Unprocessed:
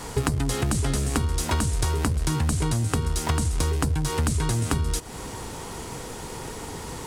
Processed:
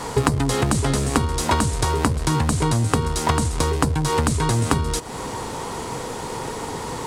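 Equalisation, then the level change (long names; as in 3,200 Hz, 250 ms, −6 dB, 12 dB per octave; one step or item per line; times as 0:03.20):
octave-band graphic EQ 125/250/500/1,000/2,000/4,000/8,000 Hz +5/+5/+7/+9/+4/+5/+4 dB
−1.5 dB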